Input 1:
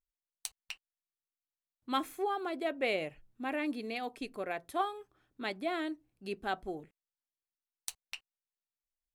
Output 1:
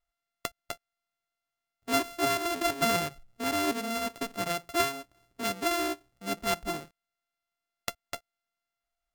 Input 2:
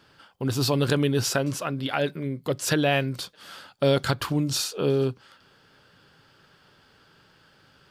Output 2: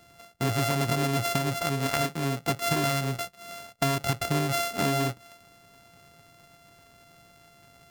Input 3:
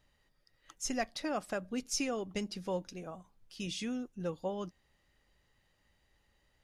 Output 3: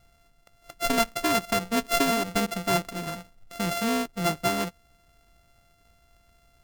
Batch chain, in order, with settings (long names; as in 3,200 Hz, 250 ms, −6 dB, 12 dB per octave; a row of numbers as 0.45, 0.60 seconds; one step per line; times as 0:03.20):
samples sorted by size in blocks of 64 samples
parametric band 580 Hz −2.5 dB 0.77 octaves
downward compressor 10 to 1, threshold −25 dBFS
normalise the peak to −9 dBFS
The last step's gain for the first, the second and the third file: +6.5, +3.0, +11.5 decibels